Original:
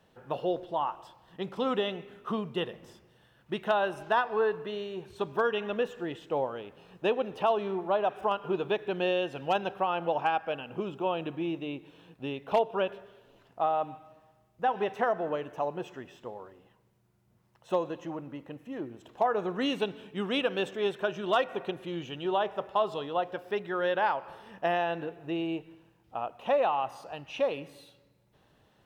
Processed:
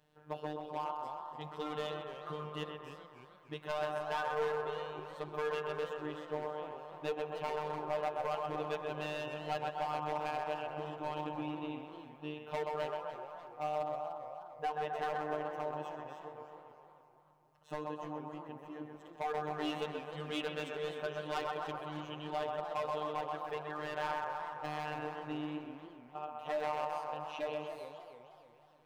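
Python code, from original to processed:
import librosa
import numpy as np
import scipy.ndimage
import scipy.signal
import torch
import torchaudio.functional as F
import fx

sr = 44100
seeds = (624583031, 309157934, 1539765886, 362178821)

y = fx.echo_banded(x, sr, ms=129, feedback_pct=75, hz=990.0, wet_db=-3.0)
y = np.clip(y, -10.0 ** (-23.5 / 20.0), 10.0 ** (-23.5 / 20.0))
y = fx.robotise(y, sr, hz=151.0)
y = fx.echo_warbled(y, sr, ms=299, feedback_pct=48, rate_hz=2.8, cents=207, wet_db=-12)
y = F.gain(torch.from_numpy(y), -6.0).numpy()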